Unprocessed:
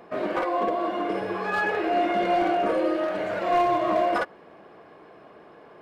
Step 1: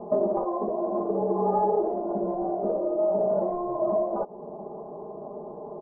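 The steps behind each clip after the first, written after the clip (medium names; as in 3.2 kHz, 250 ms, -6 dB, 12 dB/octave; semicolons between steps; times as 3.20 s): steep low-pass 940 Hz 48 dB/octave; compression 5:1, threshold -34 dBFS, peak gain reduction 13.5 dB; comb 4.9 ms, depth 95%; trim +8.5 dB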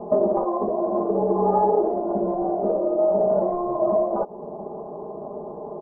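AM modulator 130 Hz, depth 15%; trim +5.5 dB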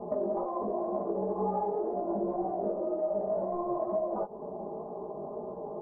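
compression, threshold -23 dBFS, peak gain reduction 8 dB; chorus 2 Hz, delay 15.5 ms, depth 4.6 ms; trim -2 dB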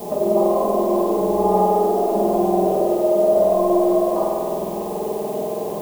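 added noise blue -50 dBFS; reverberation RT60 2.7 s, pre-delay 48 ms, DRR -3.5 dB; trim +8 dB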